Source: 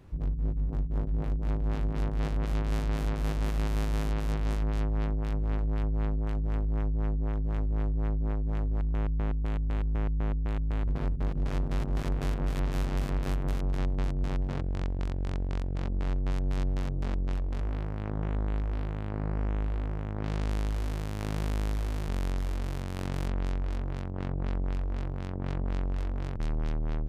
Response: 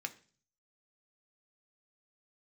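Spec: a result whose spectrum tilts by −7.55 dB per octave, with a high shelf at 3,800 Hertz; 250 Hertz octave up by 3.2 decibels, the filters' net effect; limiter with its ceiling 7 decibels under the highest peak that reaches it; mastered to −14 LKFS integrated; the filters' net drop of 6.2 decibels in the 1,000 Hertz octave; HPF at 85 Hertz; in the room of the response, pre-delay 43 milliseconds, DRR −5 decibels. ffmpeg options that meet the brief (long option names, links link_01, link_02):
-filter_complex "[0:a]highpass=85,equalizer=frequency=250:width_type=o:gain=5,equalizer=frequency=1000:width_type=o:gain=-8.5,highshelf=frequency=3800:gain=-4.5,alimiter=level_in=3.5dB:limit=-24dB:level=0:latency=1,volume=-3.5dB,asplit=2[link_01][link_02];[1:a]atrim=start_sample=2205,adelay=43[link_03];[link_02][link_03]afir=irnorm=-1:irlink=0,volume=5dB[link_04];[link_01][link_04]amix=inputs=2:normalize=0,volume=20dB"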